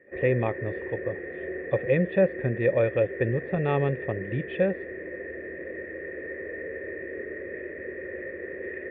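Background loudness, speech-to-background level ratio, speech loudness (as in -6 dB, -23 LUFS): -36.0 LUFS, 9.0 dB, -27.0 LUFS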